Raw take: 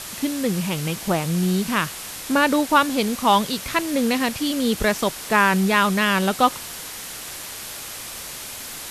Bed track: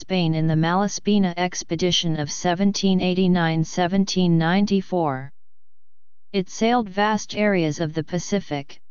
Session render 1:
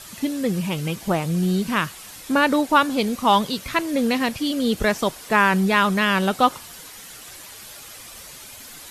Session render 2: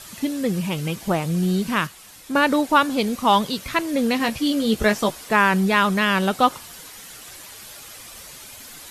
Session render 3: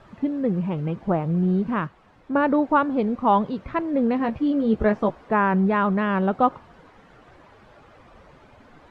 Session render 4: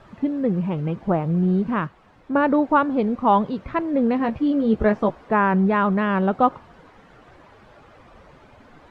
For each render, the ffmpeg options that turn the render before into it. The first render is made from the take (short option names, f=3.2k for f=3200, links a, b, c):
-af "afftdn=nr=9:nf=-35"
-filter_complex "[0:a]asettb=1/sr,asplit=3[a][b][c];[a]atrim=end=4.184[d];[b]atrim=start=4.18:end=5.24,asetpts=PTS-STARTPTS,afade=t=in:d=0.004:c=qsin,afade=t=out:st=1.056:d=0.004:c=qsin,asplit=2[e][f];[f]adelay=14,volume=-6dB[g];[e][g]amix=inputs=2:normalize=0,atrim=end_sample=46746[h];[c]atrim=start=5.236[i];[d][h]acrossfade=d=0.004:c1=hsin:c2=qsin[j];[j][i]acrossfade=d=0.004:c1=qsin:c2=hsin,asplit=3[k][l][m];[k]atrim=end=1.872[n];[l]atrim=start=1.868:end=2.352,asetpts=PTS-STARTPTS,volume=-5dB[o];[m]atrim=start=2.348[p];[n][o]acrossfade=d=0.004:c1=hsin:c2=hsin[q];[q][p]acrossfade=d=0.004:c1=hsin:c2=hsin"
-af "lowpass=1.1k"
-af "volume=1.5dB"